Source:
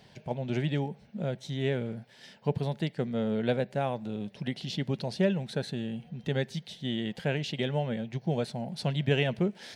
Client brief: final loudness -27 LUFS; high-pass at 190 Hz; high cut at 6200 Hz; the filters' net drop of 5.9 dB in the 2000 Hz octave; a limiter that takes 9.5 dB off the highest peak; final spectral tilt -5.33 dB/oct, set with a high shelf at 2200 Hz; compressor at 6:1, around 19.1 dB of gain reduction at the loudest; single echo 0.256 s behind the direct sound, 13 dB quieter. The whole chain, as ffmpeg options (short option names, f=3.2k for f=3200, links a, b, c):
-af "highpass=190,lowpass=6.2k,equalizer=f=2k:t=o:g=-5.5,highshelf=f=2.2k:g=-3.5,acompressor=threshold=-45dB:ratio=6,alimiter=level_in=17dB:limit=-24dB:level=0:latency=1,volume=-17dB,aecho=1:1:256:0.224,volume=24dB"